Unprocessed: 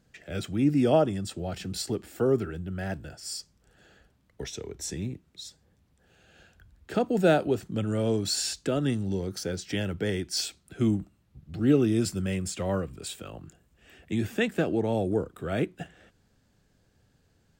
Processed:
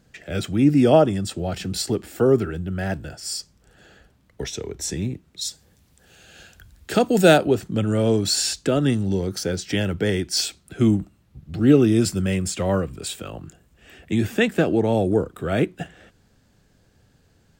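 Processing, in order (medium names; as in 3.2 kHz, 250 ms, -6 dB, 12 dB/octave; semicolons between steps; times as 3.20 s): 5.41–7.38 s: treble shelf 3.1 kHz +11 dB; trim +7 dB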